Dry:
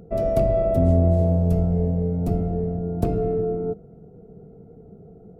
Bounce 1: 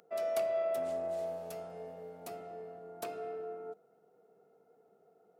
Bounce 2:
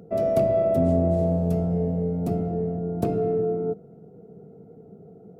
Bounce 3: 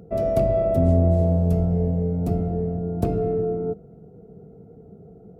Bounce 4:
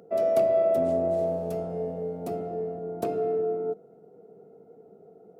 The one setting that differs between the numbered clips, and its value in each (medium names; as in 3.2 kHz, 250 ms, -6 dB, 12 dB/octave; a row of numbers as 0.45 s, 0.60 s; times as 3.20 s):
high-pass, cutoff frequency: 1.2 kHz, 140 Hz, 46 Hz, 410 Hz